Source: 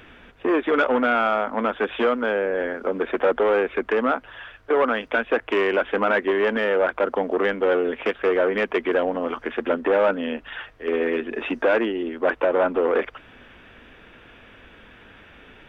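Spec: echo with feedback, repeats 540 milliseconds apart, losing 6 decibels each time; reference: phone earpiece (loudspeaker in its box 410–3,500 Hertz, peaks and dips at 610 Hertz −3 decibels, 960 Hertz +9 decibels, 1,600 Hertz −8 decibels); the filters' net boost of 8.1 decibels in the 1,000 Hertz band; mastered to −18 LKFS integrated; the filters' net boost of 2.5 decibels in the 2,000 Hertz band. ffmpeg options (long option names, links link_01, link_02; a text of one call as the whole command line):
ffmpeg -i in.wav -af "highpass=410,equalizer=frequency=610:width_type=q:width=4:gain=-3,equalizer=frequency=960:width_type=q:width=4:gain=9,equalizer=frequency=1600:width_type=q:width=4:gain=-8,lowpass=frequency=3500:width=0.5412,lowpass=frequency=3500:width=1.3066,equalizer=frequency=1000:width_type=o:gain=5,equalizer=frequency=2000:width_type=o:gain=7,aecho=1:1:540|1080|1620|2160|2700|3240:0.501|0.251|0.125|0.0626|0.0313|0.0157,volume=2dB" out.wav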